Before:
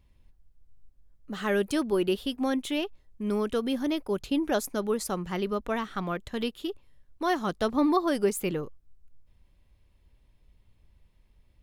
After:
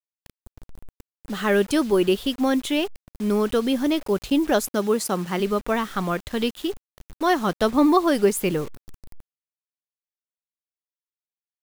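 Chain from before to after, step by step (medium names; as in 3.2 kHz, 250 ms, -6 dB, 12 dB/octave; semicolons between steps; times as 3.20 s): 4.66–5.39 s: high-pass 54 Hz -> 170 Hz 24 dB/octave; bit crusher 8-bit; trim +6.5 dB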